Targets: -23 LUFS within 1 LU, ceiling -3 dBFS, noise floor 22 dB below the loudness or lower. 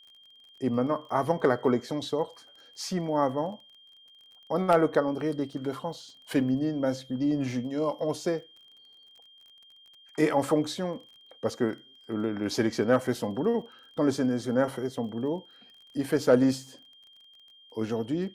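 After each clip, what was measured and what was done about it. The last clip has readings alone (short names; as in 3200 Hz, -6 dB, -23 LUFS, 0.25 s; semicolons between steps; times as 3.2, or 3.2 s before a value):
ticks 30/s; steady tone 3200 Hz; tone level -53 dBFS; loudness -28.5 LUFS; peak -9.5 dBFS; loudness target -23.0 LUFS
-> de-click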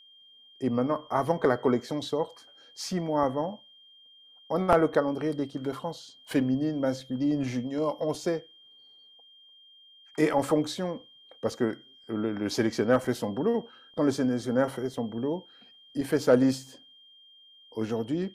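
ticks 0.16/s; steady tone 3200 Hz; tone level -53 dBFS
-> notch 3200 Hz, Q 30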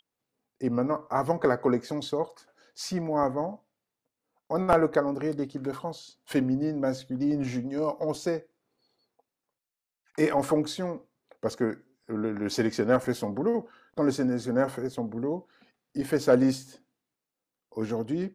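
steady tone none; loudness -28.5 LUFS; peak -6.0 dBFS; loudness target -23.0 LUFS
-> gain +5.5 dB; limiter -3 dBFS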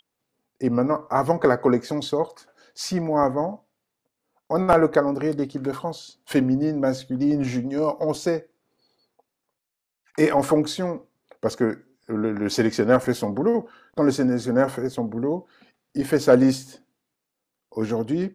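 loudness -23.0 LUFS; peak -3.0 dBFS; noise floor -82 dBFS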